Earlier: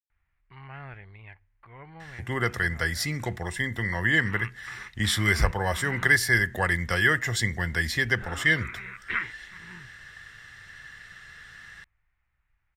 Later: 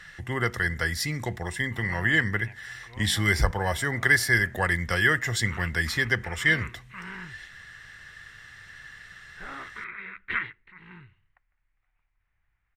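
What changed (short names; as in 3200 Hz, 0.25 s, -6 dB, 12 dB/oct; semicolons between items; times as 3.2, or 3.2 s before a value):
speech: entry -2.00 s; background: entry +1.20 s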